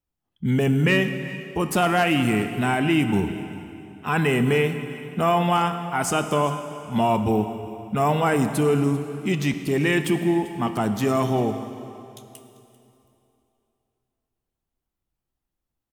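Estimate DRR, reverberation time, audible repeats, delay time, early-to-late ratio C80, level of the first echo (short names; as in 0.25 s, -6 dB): 7.5 dB, 2.8 s, 1, 0.393 s, 9.5 dB, -19.5 dB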